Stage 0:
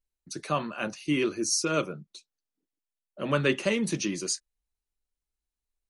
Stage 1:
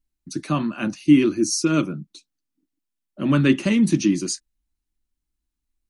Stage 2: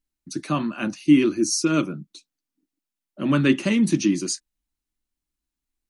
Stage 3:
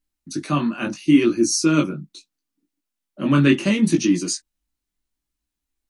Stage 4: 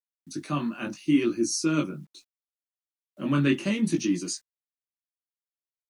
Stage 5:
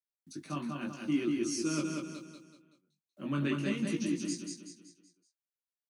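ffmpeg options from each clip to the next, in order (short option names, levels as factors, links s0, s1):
-af "lowshelf=f=370:t=q:w=3:g=6.5,volume=1.33"
-af "lowshelf=f=120:g=-8"
-af "flanger=delay=17:depth=4.5:speed=0.73,volume=1.88"
-af "acrusher=bits=9:mix=0:aa=0.000001,volume=0.422"
-af "aecho=1:1:189|378|567|756|945:0.668|0.287|0.124|0.0531|0.0228,volume=0.355"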